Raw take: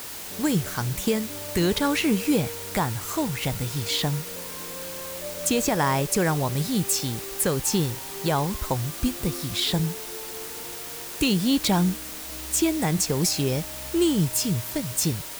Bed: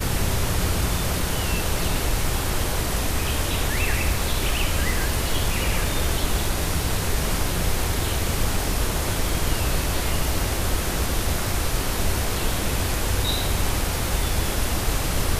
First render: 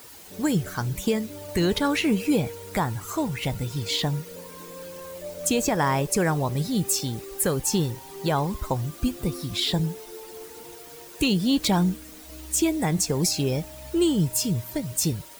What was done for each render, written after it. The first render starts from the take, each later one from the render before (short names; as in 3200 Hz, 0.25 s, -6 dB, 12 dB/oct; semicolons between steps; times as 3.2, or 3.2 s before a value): denoiser 11 dB, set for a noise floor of -37 dBFS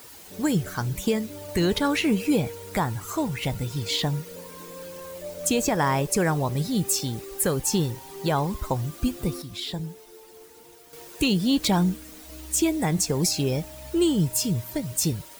9.42–10.93 gain -7.5 dB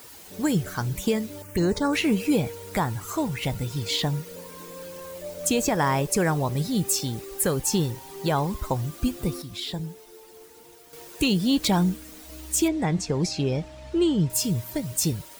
1.42–1.93 envelope phaser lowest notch 540 Hz, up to 3300 Hz, full sweep at -19 dBFS; 12.68–14.3 air absorption 110 m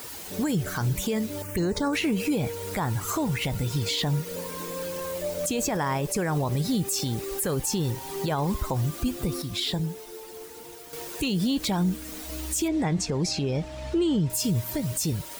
in parallel at +1 dB: compressor, threshold -33 dBFS, peak gain reduction 14.5 dB; on the sum: limiter -18 dBFS, peak gain reduction 9 dB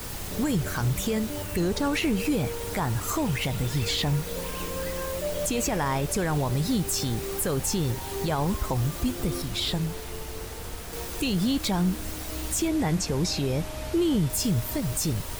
add bed -14.5 dB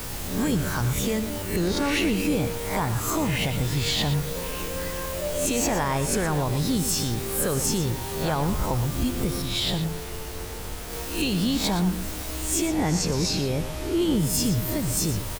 spectral swells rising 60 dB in 0.49 s; on a send: echo 0.118 s -11 dB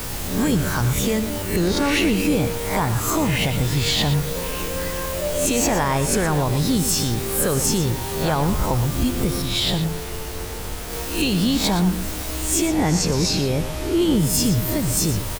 gain +4.5 dB